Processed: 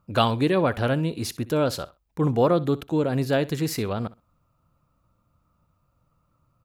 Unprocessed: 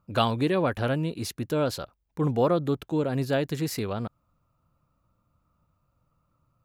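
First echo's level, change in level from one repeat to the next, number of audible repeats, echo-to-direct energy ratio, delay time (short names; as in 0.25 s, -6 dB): -19.0 dB, -15.0 dB, 2, -19.0 dB, 63 ms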